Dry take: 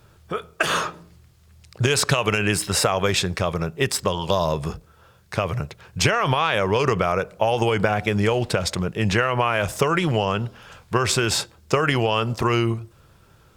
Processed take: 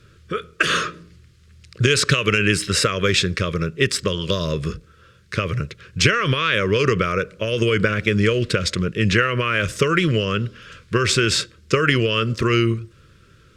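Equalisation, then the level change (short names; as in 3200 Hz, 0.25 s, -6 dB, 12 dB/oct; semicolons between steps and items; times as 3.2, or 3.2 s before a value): Butterworth band-stop 800 Hz, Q 1; air absorption 56 m; low shelf 420 Hz -3 dB; +5.5 dB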